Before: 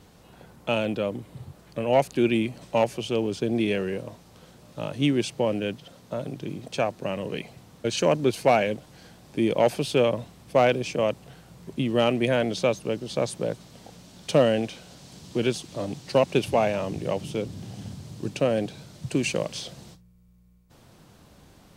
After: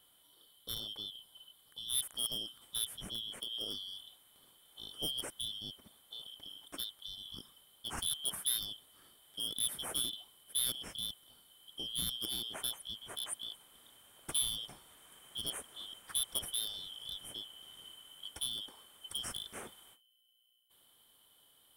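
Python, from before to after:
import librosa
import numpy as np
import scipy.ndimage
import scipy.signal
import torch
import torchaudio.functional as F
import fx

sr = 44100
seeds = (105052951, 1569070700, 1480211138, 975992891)

y = fx.band_shuffle(x, sr, order='3412')
y = np.clip(10.0 ** (16.0 / 20.0) * y, -1.0, 1.0) / 10.0 ** (16.0 / 20.0)
y = fx.curve_eq(y, sr, hz=(1200.0, 6200.0, 9700.0), db=(0, -13, 11))
y = y * 10.0 ** (-9.0 / 20.0)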